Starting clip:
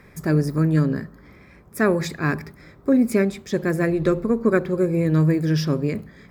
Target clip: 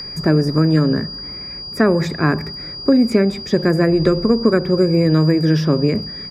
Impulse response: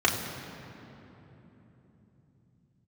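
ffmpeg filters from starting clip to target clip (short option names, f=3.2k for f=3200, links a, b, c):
-filter_complex "[0:a]aresample=32000,aresample=44100,aeval=exprs='val(0)+0.0224*sin(2*PI*4800*n/s)':c=same,acrossover=split=240|1500|6500[a][b][c][d];[a]acompressor=threshold=-27dB:ratio=4[e];[b]acompressor=threshold=-23dB:ratio=4[f];[c]acompressor=threshold=-41dB:ratio=4[g];[d]acompressor=threshold=-57dB:ratio=4[h];[e][f][g][h]amix=inputs=4:normalize=0,volume=9dB"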